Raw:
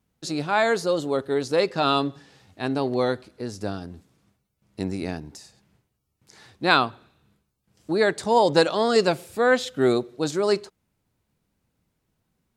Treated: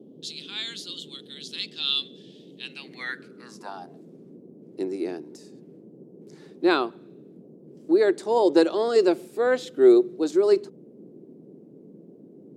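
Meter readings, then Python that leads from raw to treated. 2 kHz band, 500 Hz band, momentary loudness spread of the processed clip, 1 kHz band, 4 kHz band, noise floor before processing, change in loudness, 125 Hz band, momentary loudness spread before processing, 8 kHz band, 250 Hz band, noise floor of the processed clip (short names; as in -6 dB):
-7.0 dB, 0.0 dB, 20 LU, -7.5 dB, -0.5 dB, -77 dBFS, 0.0 dB, -15.0 dB, 12 LU, n/a, +1.5 dB, -50 dBFS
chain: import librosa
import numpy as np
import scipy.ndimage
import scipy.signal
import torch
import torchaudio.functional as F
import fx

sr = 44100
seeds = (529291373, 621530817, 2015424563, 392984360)

y = fx.filter_sweep_highpass(x, sr, from_hz=3300.0, to_hz=350.0, start_s=2.56, end_s=4.52, q=6.6)
y = fx.dmg_noise_band(y, sr, seeds[0], low_hz=150.0, high_hz=440.0, level_db=-40.0)
y = y * librosa.db_to_amplitude(-7.5)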